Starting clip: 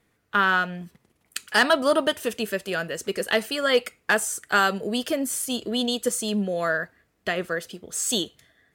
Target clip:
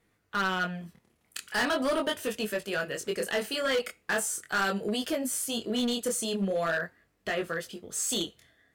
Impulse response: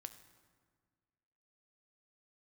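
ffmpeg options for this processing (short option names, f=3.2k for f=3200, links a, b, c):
-filter_complex "[0:a]asplit=2[a][b];[b]alimiter=limit=-17dB:level=0:latency=1:release=29,volume=-1dB[c];[a][c]amix=inputs=2:normalize=0,flanger=delay=19:depth=7.3:speed=0.4,volume=17.5dB,asoftclip=hard,volume=-17.5dB,volume=-5.5dB"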